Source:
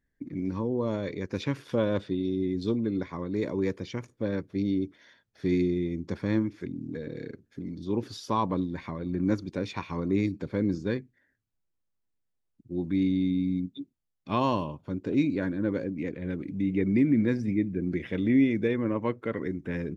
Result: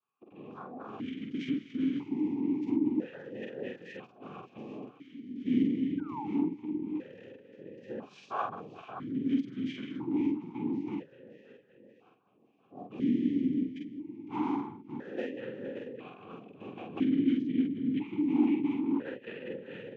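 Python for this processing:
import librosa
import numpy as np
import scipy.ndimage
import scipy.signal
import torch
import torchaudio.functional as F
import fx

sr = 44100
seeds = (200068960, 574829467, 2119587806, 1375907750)

p1 = fx.rider(x, sr, range_db=3, speed_s=0.5)
p2 = x + (p1 * librosa.db_to_amplitude(-1.0))
p3 = scipy.signal.sosfilt(scipy.signal.cheby1(2, 1.0, [360.0, 770.0], 'bandstop', fs=sr, output='sos'), p2)
p4 = p3 + fx.echo_feedback(p3, sr, ms=573, feedback_pct=52, wet_db=-14.5, dry=0)
p5 = 10.0 ** (-15.5 / 20.0) * (np.abs((p4 / 10.0 ** (-15.5 / 20.0) + 3.0) % 4.0 - 2.0) - 1.0)
p6 = fx.noise_vocoder(p5, sr, seeds[0], bands=6)
p7 = fx.formant_shift(p6, sr, semitones=-3)
p8 = fx.spec_paint(p7, sr, seeds[1], shape='fall', start_s=5.98, length_s=0.25, low_hz=760.0, high_hz=1600.0, level_db=-31.0)
p9 = fx.doubler(p8, sr, ms=46.0, db=-3)
y = fx.vowel_held(p9, sr, hz=1.0)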